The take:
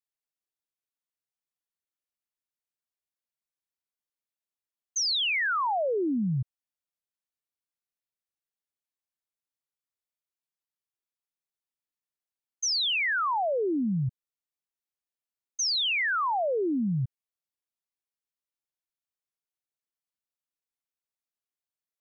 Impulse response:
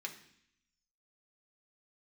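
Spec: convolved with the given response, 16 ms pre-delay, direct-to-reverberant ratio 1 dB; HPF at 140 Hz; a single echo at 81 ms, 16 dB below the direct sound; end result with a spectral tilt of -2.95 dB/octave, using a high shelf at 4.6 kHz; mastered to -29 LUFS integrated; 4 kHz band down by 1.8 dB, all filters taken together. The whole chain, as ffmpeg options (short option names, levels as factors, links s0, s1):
-filter_complex "[0:a]highpass=140,equalizer=f=4000:t=o:g=-4.5,highshelf=f=4600:g=4,aecho=1:1:81:0.158,asplit=2[s0][s1];[1:a]atrim=start_sample=2205,adelay=16[s2];[s1][s2]afir=irnorm=-1:irlink=0,volume=0.944[s3];[s0][s3]amix=inputs=2:normalize=0,volume=0.631"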